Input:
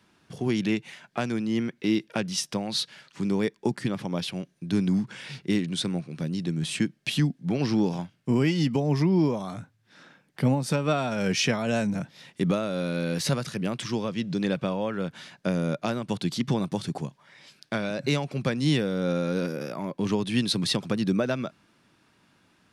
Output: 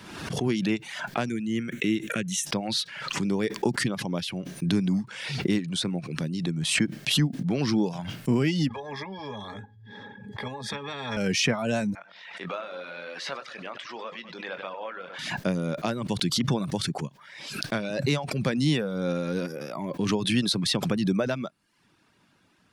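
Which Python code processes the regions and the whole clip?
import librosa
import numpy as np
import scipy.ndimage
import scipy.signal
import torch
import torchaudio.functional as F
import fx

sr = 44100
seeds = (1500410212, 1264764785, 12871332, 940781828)

y = fx.chain(x, sr, fx.peak_eq(hz=6500.0, db=12.5, octaves=0.97),
    fx.fixed_phaser(hz=2100.0, stages=4), at=(1.29, 2.46))
y = fx.chain(y, sr, fx.highpass(hz=85.0, slope=24),
    fx.octave_resonator(note='G#', decay_s=0.12),
    fx.spectral_comp(ratio=4.0), at=(8.69, 11.17))
y = fx.chain(y, sr, fx.bandpass_edges(low_hz=790.0, high_hz=2800.0),
    fx.doubler(ms=22.0, db=-11.0),
    fx.echo_feedback(ms=98, feedback_pct=50, wet_db=-10.5), at=(11.95, 15.19))
y = fx.dereverb_blind(y, sr, rt60_s=0.58)
y = fx.pre_swell(y, sr, db_per_s=50.0)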